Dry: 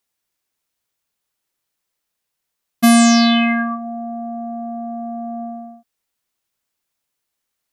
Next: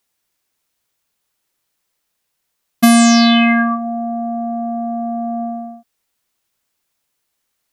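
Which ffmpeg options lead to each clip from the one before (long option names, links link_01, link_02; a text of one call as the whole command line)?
ffmpeg -i in.wav -af "acompressor=threshold=-13dB:ratio=6,volume=5.5dB" out.wav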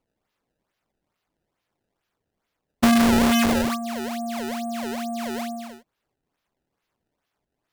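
ffmpeg -i in.wav -af "acrusher=samples=23:mix=1:aa=0.000001:lfo=1:lforange=36.8:lforate=2.3,volume=-7.5dB" out.wav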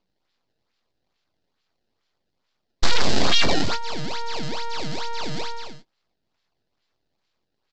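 ffmpeg -i in.wav -filter_complex "[0:a]aresample=16000,aeval=exprs='abs(val(0))':channel_layout=same,aresample=44100,lowpass=frequency=4500:width_type=q:width=2.9,asplit=2[link_01][link_02];[link_02]adelay=22,volume=-13dB[link_03];[link_01][link_03]amix=inputs=2:normalize=0,volume=3.5dB" out.wav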